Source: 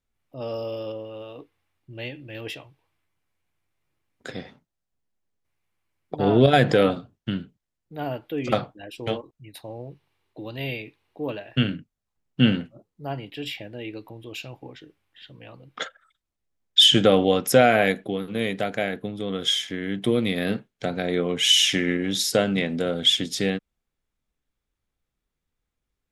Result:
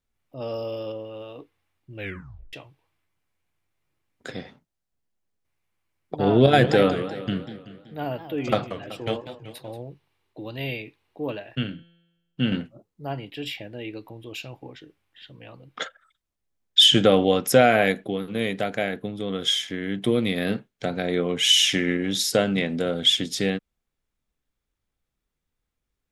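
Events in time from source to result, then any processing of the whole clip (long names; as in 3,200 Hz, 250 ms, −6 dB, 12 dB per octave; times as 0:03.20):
0:01.96: tape stop 0.57 s
0:06.26–0:09.83: feedback echo with a swinging delay time 190 ms, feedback 52%, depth 215 cents, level −12 dB
0:11.55–0:12.52: tuned comb filter 170 Hz, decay 1.1 s, mix 50%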